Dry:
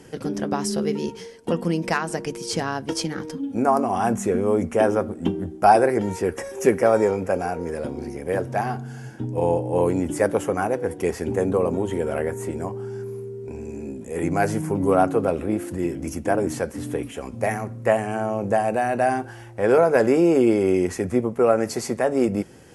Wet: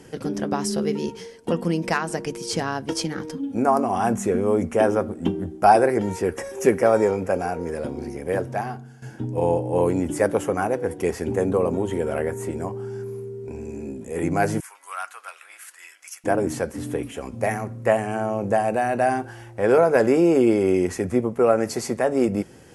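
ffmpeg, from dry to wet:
-filter_complex "[0:a]asettb=1/sr,asplit=3[s0][s1][s2];[s0]atrim=end=14.604[s3];[s1]atrim=start=14.6:end=16.24,asetpts=PTS-STARTPTS,afade=t=in:d=0.004:c=qsin,afade=t=out:st=1.636:d=0.004:c=qsin,highpass=f=1300:w=0.5412,highpass=f=1300:w=1.3066[s4];[s2]atrim=start=16.236[s5];[s3][s4]acrossfade=d=0.004:c1=hsin:c2=qsin[s6];[s6][s5]acrossfade=d=0.004:c1=qsin:c2=hsin,asplit=2[s7][s8];[s7]atrim=end=9.02,asetpts=PTS-STARTPTS,afade=t=out:st=8.37:d=0.65:silence=0.199526[s9];[s8]atrim=start=9.02,asetpts=PTS-STARTPTS,afade=t=in:d=0.004:c=hsin:silence=0.199526[s10];[s9][s10]concat=n=2:v=0:a=1"

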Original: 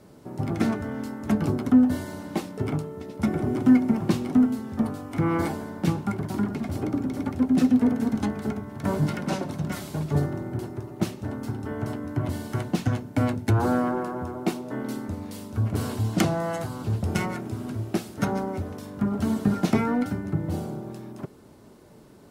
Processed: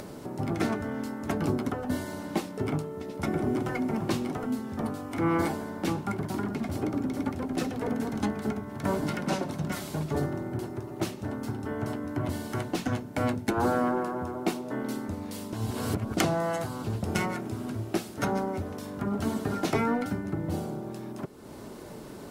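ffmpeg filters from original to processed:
-filter_complex "[0:a]asplit=3[s0][s1][s2];[s0]atrim=end=15.532[s3];[s1]atrim=start=15.528:end=16.172,asetpts=PTS-STARTPTS,areverse[s4];[s2]atrim=start=16.168[s5];[s3][s4]acrossfade=d=0.004:c1=hsin:c2=hsin[s6];[s6][s5]acrossfade=d=0.004:c1=hsin:c2=hsin,afftfilt=real='re*lt(hypot(re,im),0.794)':imag='im*lt(hypot(re,im),0.794)':win_size=1024:overlap=0.75,equalizer=f=97:t=o:w=2.2:g=-4,acompressor=mode=upward:threshold=0.0251:ratio=2.5"

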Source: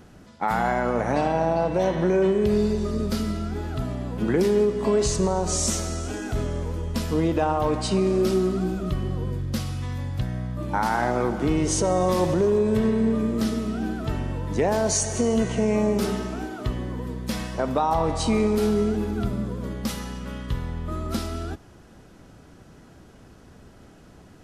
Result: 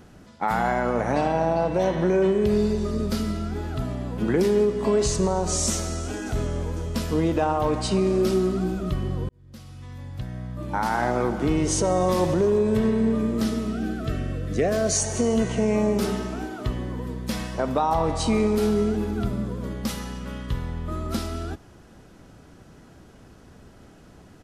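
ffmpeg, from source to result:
-filter_complex "[0:a]asplit=2[s0][s1];[s1]afade=t=in:st=5.76:d=0.01,afade=t=out:st=6.66:d=0.01,aecho=0:1:500|1000|1500|2000|2500|3000:0.199526|0.119716|0.0718294|0.0430977|0.0258586|0.0155152[s2];[s0][s2]amix=inputs=2:normalize=0,asettb=1/sr,asplit=3[s3][s4][s5];[s3]atrim=end=13.734[s6];[s4]atrim=start=13.73:end=14.97,asetpts=PTS-STARTPTS,afade=t=in:d=0.004:c=qsin,afade=t=out:st=1.236:d=0.004:c=qsin,asuperstop=centerf=910:order=8:qfactor=3[s7];[s5]atrim=start=14.966[s8];[s6][s7]acrossfade=d=0.004:c1=hsin:c2=qsin[s9];[s9][s8]acrossfade=d=0.004:c1=qsin:c2=hsin,asplit=2[s10][s11];[s10]atrim=end=9.29,asetpts=PTS-STARTPTS,afade=t=out:st=9.286:d=0.004:c=hsin[s12];[s11]atrim=start=9.29,asetpts=PTS-STARTPTS,afade=t=in:d=1.79[s13];[s12][s13]concat=n=2:v=0:a=1"

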